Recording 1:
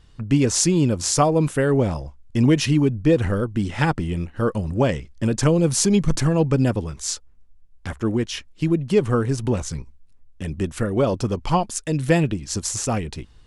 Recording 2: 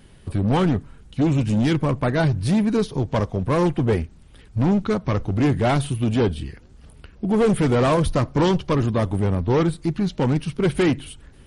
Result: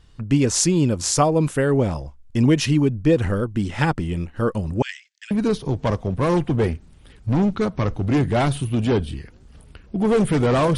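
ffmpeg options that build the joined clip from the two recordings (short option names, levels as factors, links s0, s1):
-filter_complex "[0:a]asettb=1/sr,asplit=3[s0][s1][s2];[s0]atrim=end=4.824[s3];[s1]atrim=start=4.82:end=5.31,asetpts=PTS-STARTPTS,afade=t=in:d=0.004:c=qsin,afade=t=out:st=0.486:d=0.004:c=qsin,asuperpass=centerf=3700:order=12:qfactor=0.59[s4];[s2]atrim=start=5.306[s5];[s3][s4]acrossfade=d=0.004:c1=hsin:c2=qsin[s6];[s6][s5]acrossfade=d=0.004:c1=qsin:c2=hsin,apad=whole_dur=10.77,atrim=end=10.77,atrim=end=5.312[s7];[1:a]atrim=start=2.598:end=8.06[s8];[s7][s8]acrossfade=d=0.004:c1=hsin:c2=hsin"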